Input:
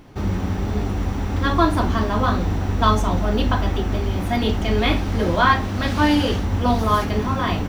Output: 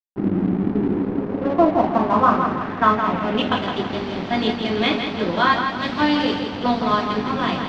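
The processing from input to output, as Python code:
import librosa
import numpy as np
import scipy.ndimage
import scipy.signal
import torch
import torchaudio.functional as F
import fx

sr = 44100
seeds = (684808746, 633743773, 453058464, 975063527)

p1 = scipy.signal.sosfilt(scipy.signal.butter(4, 140.0, 'highpass', fs=sr, output='sos'), x)
p2 = fx.rider(p1, sr, range_db=4, speed_s=0.5)
p3 = p1 + (p2 * librosa.db_to_amplitude(0.5))
p4 = fx.filter_sweep_lowpass(p3, sr, from_hz=320.0, to_hz=4400.0, start_s=0.82, end_s=3.78, q=2.6)
p5 = np.sign(p4) * np.maximum(np.abs(p4) - 10.0 ** (-25.0 / 20.0), 0.0)
p6 = fx.air_absorb(p5, sr, metres=190.0)
p7 = p6 + fx.echo_feedback(p6, sr, ms=164, feedback_pct=44, wet_db=-6.5, dry=0)
y = p7 * librosa.db_to_amplitude(-4.5)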